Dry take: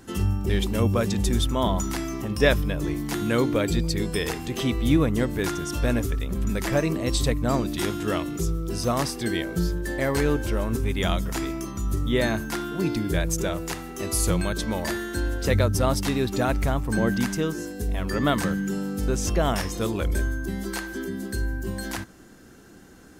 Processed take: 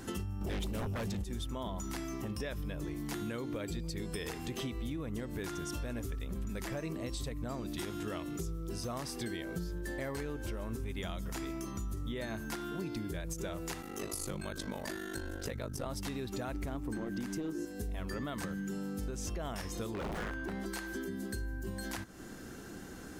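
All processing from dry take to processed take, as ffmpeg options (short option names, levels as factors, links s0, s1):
-filter_complex "[0:a]asettb=1/sr,asplit=3[s0][s1][s2];[s0]atrim=end=0.414[s3];[s1]atrim=start=0.41:end=1.24,asetpts=PTS-STARTPTS,afade=t=in:d=0.004:c=qsin,afade=t=out:st=0.826:d=0.004:c=qsin,aeval=exprs='0.299*sin(PI/2*3.16*val(0)/0.299)':c=same,asubboost=boost=3.5:cutoff=220[s4];[s2]atrim=start=1.236[s5];[s3][s4]acrossfade=d=0.004:c1=hsin:c2=qsin[s6];[s6][s5]acrossfade=d=0.004:c1=qsin:c2=hsin,asettb=1/sr,asplit=3[s7][s8][s9];[s7]atrim=end=13.814[s10];[s8]atrim=start=13.81:end=15.86,asetpts=PTS-STARTPTS,afade=t=in:d=0.004:c=qsin,afade=t=out:st=2.046:d=0.004:c=qsin,highpass=f=96:p=1,aeval=exprs='val(0)*sin(2*PI*25*n/s)':c=same[s11];[s9]atrim=start=15.856[s12];[s10][s11]acrossfade=d=0.004:c1=hsin:c2=qsin[s13];[s13][s12]acrossfade=d=0.004:c1=qsin:c2=hsin,asettb=1/sr,asplit=3[s14][s15][s16];[s14]atrim=end=16.544[s17];[s15]atrim=start=16.54:end=17.65,asetpts=PTS-STARTPTS,afade=t=in:d=0.004:c=qsin,afade=t=out:st=1.106:d=0.004:c=qsin,equalizer=f=320:t=o:w=0.67:g=11,aeval=exprs='clip(val(0),-1,0.15)':c=same[s18];[s16]atrim=start=17.646[s19];[s17][s18]acrossfade=d=0.004:c1=hsin:c2=qsin[s20];[s20][s19]acrossfade=d=0.004:c1=qsin:c2=hsin,asettb=1/sr,asplit=3[s21][s22][s23];[s21]atrim=end=19.944[s24];[s22]atrim=start=19.94:end=20.66,asetpts=PTS-STARTPTS,afade=t=in:d=0.004:c=qsin,afade=t=out:st=0.716:d=0.004:c=qsin,aeval=exprs='(mod(10*val(0)+1,2)-1)/10':c=same,asplit=2[s25][s26];[s26]highpass=f=720:p=1,volume=8.91,asoftclip=type=tanh:threshold=0.1[s27];[s25][s27]amix=inputs=2:normalize=0,lowpass=f=1000:p=1,volume=0.501[s28];[s23]atrim=start=20.656[s29];[s24][s28]acrossfade=d=0.004:c1=hsin:c2=qsin[s30];[s30][s29]acrossfade=d=0.004:c1=qsin:c2=hsin,alimiter=limit=0.141:level=0:latency=1:release=138,acompressor=threshold=0.00891:ratio=4,volume=1.33"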